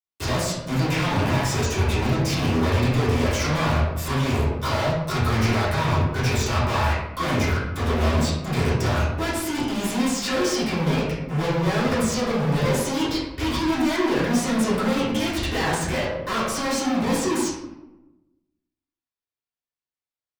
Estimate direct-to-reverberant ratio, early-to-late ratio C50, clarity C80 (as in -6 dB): -12.0 dB, 0.5 dB, 4.0 dB